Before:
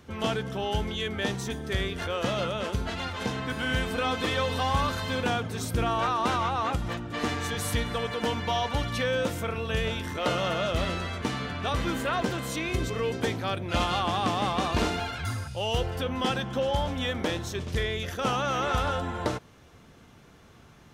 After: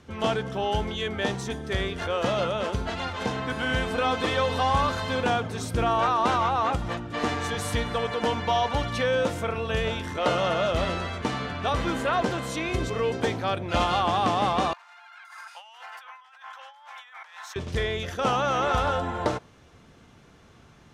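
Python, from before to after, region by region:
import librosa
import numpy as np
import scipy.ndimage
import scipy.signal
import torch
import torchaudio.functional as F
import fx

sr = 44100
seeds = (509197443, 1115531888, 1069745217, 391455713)

y = fx.chain(x, sr, fx.steep_highpass(hz=880.0, slope=36),
    fx.band_shelf(hz=5600.0, db=-9.0, octaves=2.3),
    fx.over_compress(threshold_db=-47.0, ratio=-1.0), at=(14.73, 17.56))
y = scipy.signal.sosfilt(scipy.signal.butter(2, 9800.0, 'lowpass', fs=sr, output='sos'), y)
y = fx.dynamic_eq(y, sr, hz=750.0, q=0.73, threshold_db=-39.0, ratio=4.0, max_db=5)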